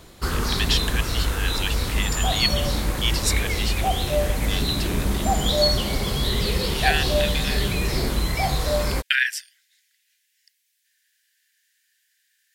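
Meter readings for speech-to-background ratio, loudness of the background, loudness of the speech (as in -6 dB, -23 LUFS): -4.0 dB, -23.5 LUFS, -27.5 LUFS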